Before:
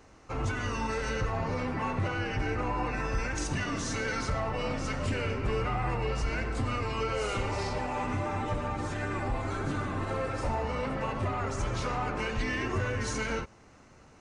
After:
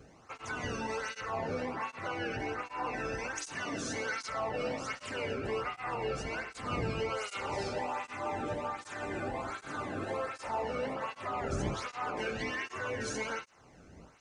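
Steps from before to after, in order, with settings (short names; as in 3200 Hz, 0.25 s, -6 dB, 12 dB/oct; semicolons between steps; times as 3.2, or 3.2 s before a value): wind noise 93 Hz -34 dBFS; tape flanging out of phase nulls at 1.3 Hz, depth 1.1 ms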